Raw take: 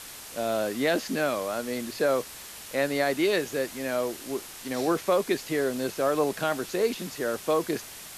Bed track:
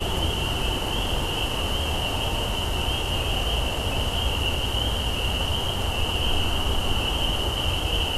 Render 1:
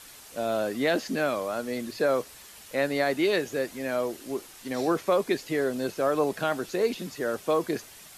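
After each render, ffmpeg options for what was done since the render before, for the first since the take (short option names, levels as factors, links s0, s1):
-af "afftdn=nr=7:nf=-43"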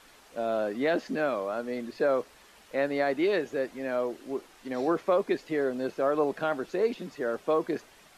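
-af "lowpass=f=1700:p=1,equalizer=f=100:t=o:w=1.5:g=-9"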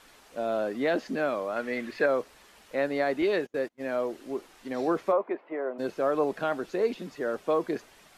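-filter_complex "[0:a]asettb=1/sr,asplit=3[s0][s1][s2];[s0]atrim=end=1.564[s3];[s1]atrim=start=1.56:end=2.06,asetpts=PTS-STARTPTS,afade=t=in:d=0.004:c=qsin,afade=t=out:st=0.496:d=0.004:c=qsin,equalizer=f=2000:t=o:w=1.2:g=11[s4];[s2]atrim=start=2.056[s5];[s3][s4]acrossfade=d=0.004:c1=hsin:c2=qsin[s6];[s6][s5]acrossfade=d=0.004:c1=qsin:c2=hsin,asettb=1/sr,asplit=3[s7][s8][s9];[s7]atrim=end=3.224[s10];[s8]atrim=start=3.22:end=3.96,asetpts=PTS-STARTPTS,afade=t=in:d=0.004:c=qsin,afade=t=out:st=0.736:d=0.004:c=qsin,agate=range=0.0251:threshold=0.0141:ratio=16:release=100:detection=peak[s11];[s9]atrim=start=3.956[s12];[s10][s11]acrossfade=d=0.004:c1=hsin:c2=qsin[s13];[s13][s12]acrossfade=d=0.004:c1=qsin:c2=hsin,asplit=3[s14][s15][s16];[s14]afade=t=out:st=5.11:d=0.02[s17];[s15]highpass=f=270:w=0.5412,highpass=f=270:w=1.3066,equalizer=f=270:t=q:w=4:g=-7,equalizer=f=430:t=q:w=4:g=-6,equalizer=f=630:t=q:w=4:g=4,equalizer=f=980:t=q:w=4:g=5,equalizer=f=1700:t=q:w=4:g=-7,lowpass=f=2000:w=0.5412,lowpass=f=2000:w=1.3066,afade=t=in:st=5.11:d=0.02,afade=t=out:st=5.78:d=0.02[s18];[s16]afade=t=in:st=5.78:d=0.02[s19];[s17][s18][s19]amix=inputs=3:normalize=0"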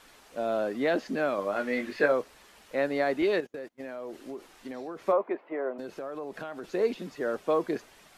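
-filter_complex "[0:a]asettb=1/sr,asplit=3[s0][s1][s2];[s0]atrim=end=1.364[s3];[s1]atrim=start=1.36:end=2.12,asetpts=PTS-STARTPTS,afade=t=in:d=0.004:c=qsin,afade=t=out:st=0.756:d=0.004:c=qsin,asplit=2[s4][s5];[s5]adelay=20,volume=0.562[s6];[s4][s6]amix=inputs=2:normalize=0,atrim=end_sample=33516[s7];[s2]atrim=start=2.116[s8];[s3][s7]acrossfade=d=0.004:c1=hsin:c2=qsin[s9];[s9][s8]acrossfade=d=0.004:c1=qsin:c2=hsin,asettb=1/sr,asplit=3[s10][s11][s12];[s10]atrim=end=3.404[s13];[s11]atrim=start=3.4:end=5.08,asetpts=PTS-STARTPTS,afade=t=in:d=0.004:c=qsin,afade=t=out:st=1.676:d=0.004:c=qsin,acompressor=threshold=0.02:ratio=12:attack=3.2:release=140:knee=1:detection=peak[s14];[s12]atrim=start=5.076[s15];[s13][s14]acrossfade=d=0.004:c1=hsin:c2=qsin[s16];[s16][s15]acrossfade=d=0.004:c1=qsin:c2=hsin,asettb=1/sr,asplit=3[s17][s18][s19];[s17]atrim=end=5.774[s20];[s18]atrim=start=5.77:end=6.64,asetpts=PTS-STARTPTS,afade=t=in:d=0.004:c=qsin,afade=t=out:st=0.866:d=0.004:c=qsin,acompressor=threshold=0.02:ratio=6:attack=3.2:release=140:knee=1:detection=peak[s21];[s19]atrim=start=6.636[s22];[s20][s21]acrossfade=d=0.004:c1=hsin:c2=qsin[s23];[s23][s22]acrossfade=d=0.004:c1=qsin:c2=hsin"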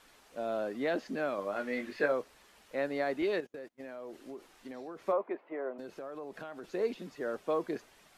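-af "volume=0.531"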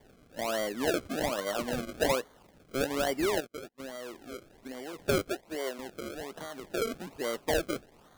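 -filter_complex "[0:a]asplit=2[s0][s1];[s1]aeval=exprs='(mod(10.6*val(0)+1,2)-1)/10.6':c=same,volume=0.355[s2];[s0][s2]amix=inputs=2:normalize=0,acrusher=samples=33:mix=1:aa=0.000001:lfo=1:lforange=33:lforate=1.2"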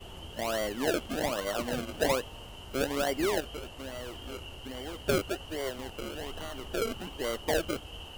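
-filter_complex "[1:a]volume=0.1[s0];[0:a][s0]amix=inputs=2:normalize=0"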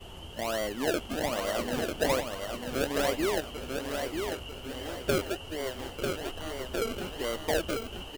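-af "aecho=1:1:945|1890|2835|3780:0.562|0.197|0.0689|0.0241"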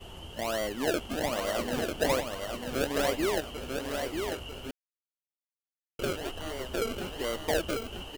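-filter_complex "[0:a]asplit=3[s0][s1][s2];[s0]atrim=end=4.71,asetpts=PTS-STARTPTS,afade=t=out:st=4.706:d=0.004:c=hsin[s3];[s1]atrim=start=4.71:end=5.99,asetpts=PTS-STARTPTS,volume=0[s4];[s2]atrim=start=5.99,asetpts=PTS-STARTPTS,afade=t=in:d=0.004:c=hsin[s5];[s3][s4][s5]concat=n=3:v=0:a=1"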